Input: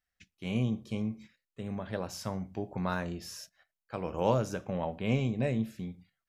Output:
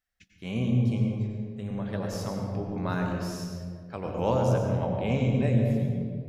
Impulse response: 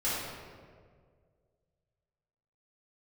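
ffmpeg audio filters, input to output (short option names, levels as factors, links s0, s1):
-filter_complex "[0:a]asplit=2[s0][s1];[1:a]atrim=start_sample=2205,lowshelf=f=420:g=7,adelay=91[s2];[s1][s2]afir=irnorm=-1:irlink=0,volume=0.282[s3];[s0][s3]amix=inputs=2:normalize=0"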